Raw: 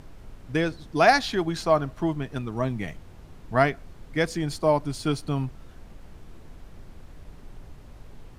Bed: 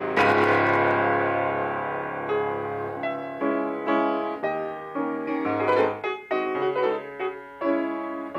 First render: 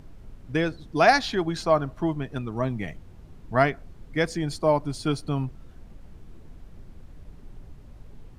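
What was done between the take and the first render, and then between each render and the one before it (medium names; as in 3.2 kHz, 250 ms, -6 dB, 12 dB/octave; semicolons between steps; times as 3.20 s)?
noise reduction 6 dB, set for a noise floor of -47 dBFS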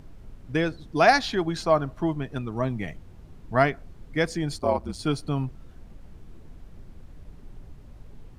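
4.58–4.99 s: ring modulator 59 Hz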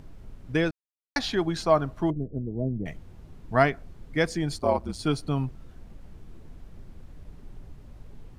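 0.71–1.16 s: mute; 2.10–2.86 s: inverse Chebyshev low-pass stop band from 1.1 kHz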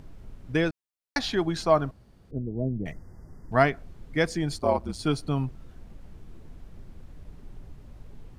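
1.91–2.31 s: room tone; 2.92–3.52 s: brick-wall FIR band-stop 2.1–4.6 kHz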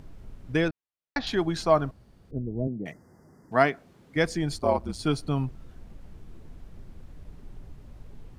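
0.68–1.27 s: distance through air 210 m; 2.67–4.16 s: high-pass 180 Hz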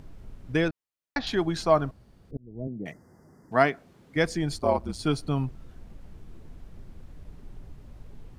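2.37–2.88 s: fade in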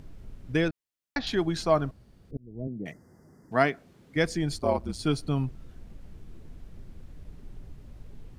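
peaking EQ 930 Hz -3.5 dB 1.4 oct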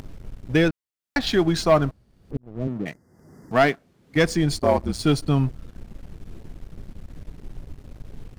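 waveshaping leveller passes 2; upward compressor, threshold -34 dBFS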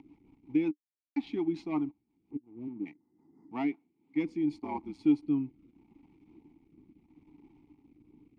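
vowel filter u; rotary cabinet horn 5.5 Hz, later 0.75 Hz, at 3.53 s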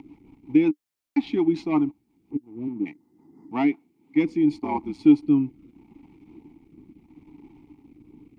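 trim +9.5 dB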